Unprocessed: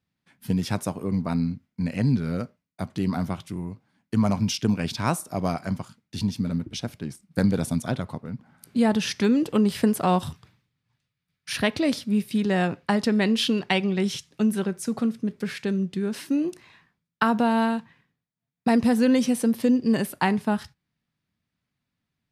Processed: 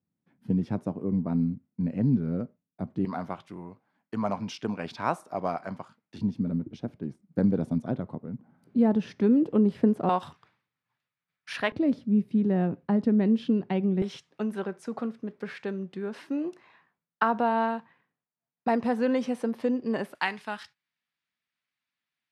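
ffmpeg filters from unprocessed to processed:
-af "asetnsamples=n=441:p=0,asendcmd='3.05 bandpass f 820;6.18 bandpass f 310;10.09 bandpass f 1100;11.72 bandpass f 230;14.02 bandpass f 810;20.15 bandpass f 2400',bandpass=f=270:t=q:w=0.76:csg=0"

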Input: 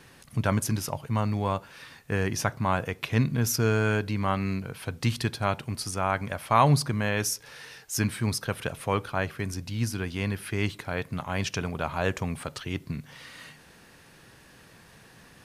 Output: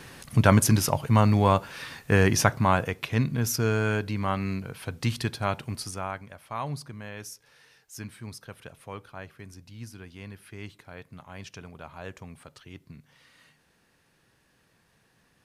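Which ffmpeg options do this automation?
-af "volume=2.24,afade=t=out:st=2.31:d=0.77:silence=0.398107,afade=t=out:st=5.73:d=0.53:silence=0.251189"

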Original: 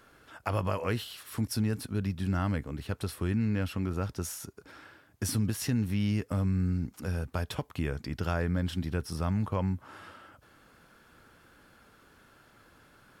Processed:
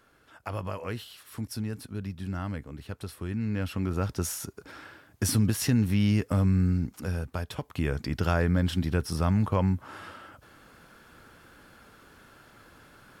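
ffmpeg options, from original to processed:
-af "volume=3.98,afade=t=in:st=3.28:d=0.96:silence=0.354813,afade=t=out:st=6.54:d=0.99:silence=0.446684,afade=t=in:st=7.53:d=0.44:silence=0.446684"

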